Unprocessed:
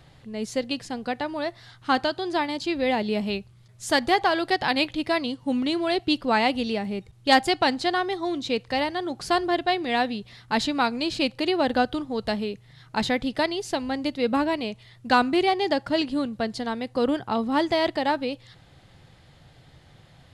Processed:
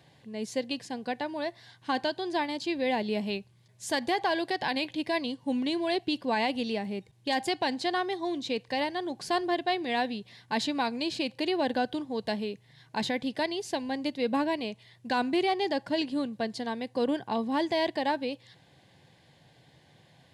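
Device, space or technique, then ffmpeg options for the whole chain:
PA system with an anti-feedback notch: -af "highpass=140,asuperstop=centerf=1300:order=4:qfactor=4.8,alimiter=limit=-15dB:level=0:latency=1:release=37,volume=-4dB"

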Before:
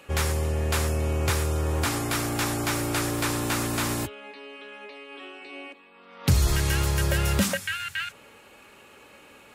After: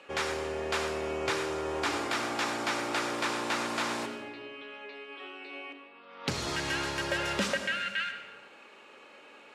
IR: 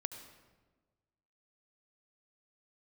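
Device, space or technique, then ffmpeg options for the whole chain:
supermarket ceiling speaker: -filter_complex "[0:a]highpass=300,lowpass=5.1k[a];[1:a]atrim=start_sample=2205[b];[a][b]afir=irnorm=-1:irlink=0"

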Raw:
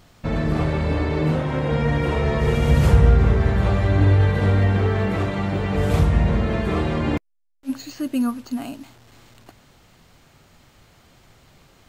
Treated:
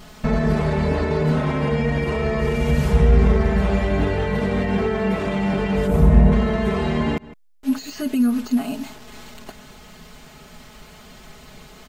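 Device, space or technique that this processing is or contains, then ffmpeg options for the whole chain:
de-esser from a sidechain: -filter_complex "[0:a]asplit=3[a][b][c];[a]afade=t=out:st=5.86:d=0.02[d];[b]equalizer=f=4.1k:w=0.46:g=-15,afade=t=in:st=5.86:d=0.02,afade=t=out:st=6.31:d=0.02[e];[c]afade=t=in:st=6.31:d=0.02[f];[d][e][f]amix=inputs=3:normalize=0,aecho=1:1:4.7:0.98,asplit=2[g][h];[h]adelay=157.4,volume=-27dB,highshelf=f=4k:g=-3.54[i];[g][i]amix=inputs=2:normalize=0,asplit=2[j][k];[k]highpass=f=4.3k:p=1,apad=whole_len=531224[l];[j][l]sidechaincompress=threshold=-40dB:ratio=8:attack=0.54:release=84,volume=7dB"

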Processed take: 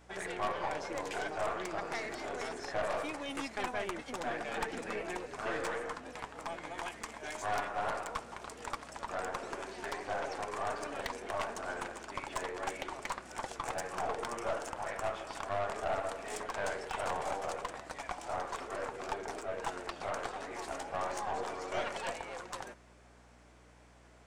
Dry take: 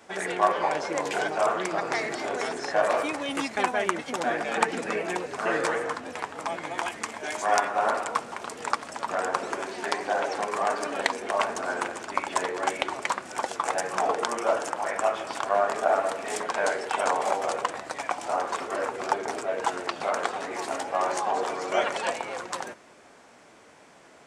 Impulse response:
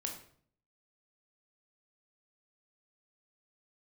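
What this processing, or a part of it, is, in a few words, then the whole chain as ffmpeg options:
valve amplifier with mains hum: -af "aeval=exprs='(tanh(11.2*val(0)+0.5)-tanh(0.5))/11.2':c=same,aeval=exprs='val(0)+0.002*(sin(2*PI*60*n/s)+sin(2*PI*2*60*n/s)/2+sin(2*PI*3*60*n/s)/3+sin(2*PI*4*60*n/s)/4+sin(2*PI*5*60*n/s)/5)':c=same,volume=-7dB"

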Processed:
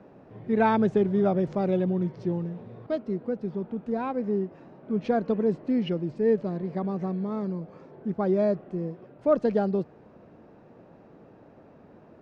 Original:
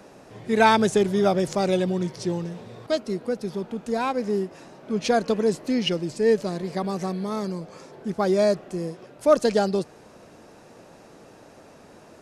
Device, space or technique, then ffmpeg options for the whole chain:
phone in a pocket: -af "lowpass=3.2k,equalizer=f=160:t=o:w=2.7:g=5.5,highshelf=f=2.4k:g=-11,volume=-5.5dB"

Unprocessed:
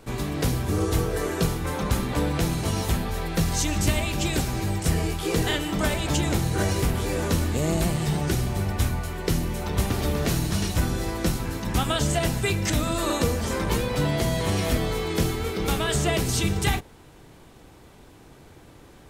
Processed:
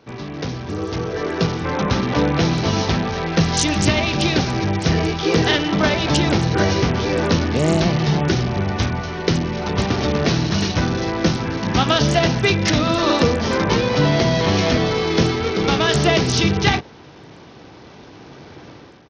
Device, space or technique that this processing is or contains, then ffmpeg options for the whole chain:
Bluetooth headset: -af "highpass=110,dynaudnorm=f=890:g=3:m=13dB,aresample=16000,aresample=44100,volume=-1dB" -ar 48000 -c:a sbc -b:a 64k

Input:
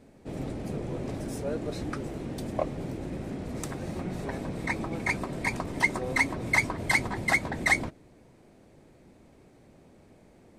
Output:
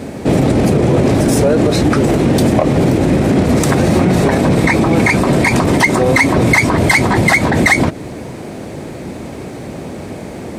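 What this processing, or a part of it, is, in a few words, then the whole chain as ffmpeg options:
loud club master: -af "acompressor=threshold=-34dB:ratio=2,asoftclip=type=hard:threshold=-23.5dB,alimiter=level_in=32dB:limit=-1dB:release=50:level=0:latency=1,highpass=67,volume=-2.5dB"

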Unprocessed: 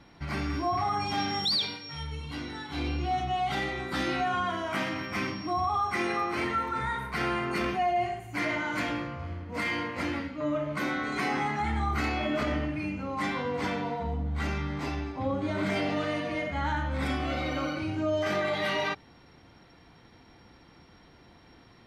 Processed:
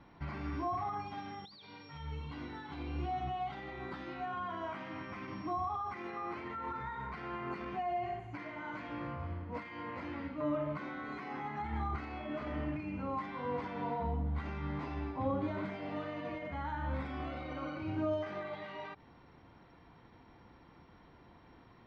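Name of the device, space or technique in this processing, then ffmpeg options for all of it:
de-esser from a sidechain: -filter_complex "[0:a]lowpass=5.4k,aemphasis=mode=reproduction:type=75kf,asplit=2[a][b];[b]highpass=4.2k,apad=whole_len=964137[c];[a][c]sidechaincompress=threshold=-55dB:ratio=10:attack=1.8:release=91,equalizer=f=1k:t=o:w=0.37:g=5,volume=-3.5dB"

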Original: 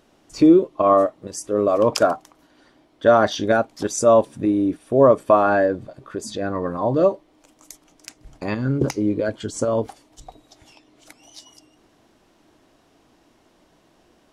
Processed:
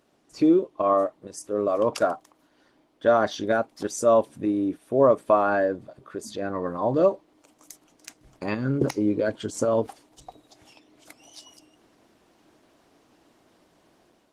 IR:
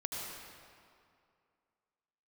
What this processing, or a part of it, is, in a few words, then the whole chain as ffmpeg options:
video call: -af "highpass=f=140:p=1,dynaudnorm=f=780:g=3:m=5.5dB,volume=-5.5dB" -ar 48000 -c:a libopus -b:a 20k

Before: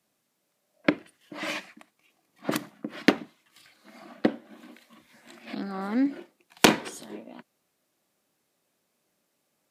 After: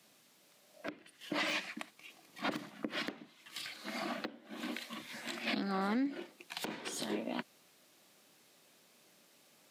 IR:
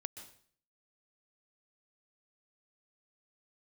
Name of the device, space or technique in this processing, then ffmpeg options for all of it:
broadcast voice chain: -af "highpass=110,deesser=0.95,acompressor=threshold=-40dB:ratio=4,equalizer=f=3.6k:t=o:w=1.8:g=5.5,alimiter=level_in=8dB:limit=-24dB:level=0:latency=1:release=353,volume=-8dB,volume=8dB"

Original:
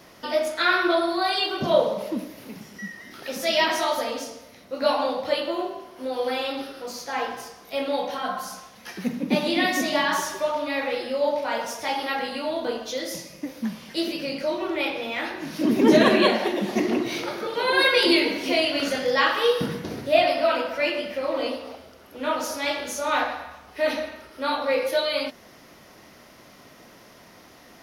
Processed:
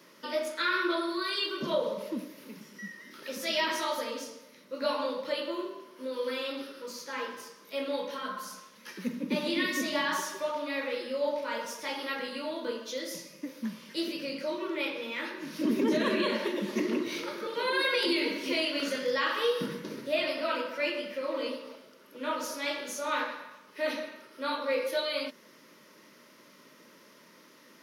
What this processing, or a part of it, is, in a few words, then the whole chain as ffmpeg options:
PA system with an anti-feedback notch: -af "highpass=f=170:w=0.5412,highpass=f=170:w=1.3066,asuperstop=centerf=740:order=4:qfactor=3.1,alimiter=limit=-12.5dB:level=0:latency=1:release=74,volume=-6dB"

